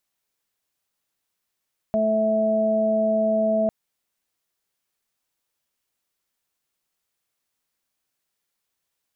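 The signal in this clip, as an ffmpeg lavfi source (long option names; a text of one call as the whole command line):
ffmpeg -f lavfi -i "aevalsrc='0.0631*sin(2*PI*218*t)+0.02*sin(2*PI*436*t)+0.112*sin(2*PI*654*t)':duration=1.75:sample_rate=44100" out.wav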